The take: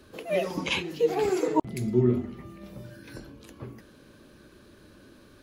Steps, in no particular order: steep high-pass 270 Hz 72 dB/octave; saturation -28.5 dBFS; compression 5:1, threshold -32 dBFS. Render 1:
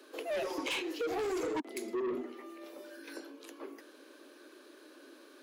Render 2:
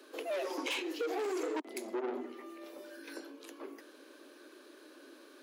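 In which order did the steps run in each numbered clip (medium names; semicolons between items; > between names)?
steep high-pass > saturation > compression; saturation > steep high-pass > compression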